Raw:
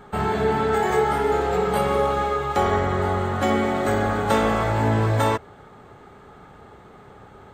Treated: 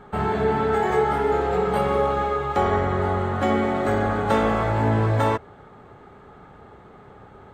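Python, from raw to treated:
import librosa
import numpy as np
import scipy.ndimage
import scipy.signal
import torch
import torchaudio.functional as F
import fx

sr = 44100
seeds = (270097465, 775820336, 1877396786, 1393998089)

y = fx.high_shelf(x, sr, hz=4300.0, db=-10.5)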